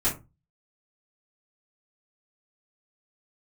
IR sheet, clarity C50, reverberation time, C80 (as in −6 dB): 10.5 dB, 0.25 s, 18.5 dB